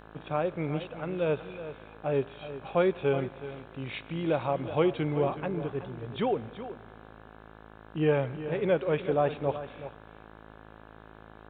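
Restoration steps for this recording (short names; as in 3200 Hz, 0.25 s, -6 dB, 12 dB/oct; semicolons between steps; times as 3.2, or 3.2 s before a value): de-hum 53.9 Hz, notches 32; inverse comb 0.374 s -12.5 dB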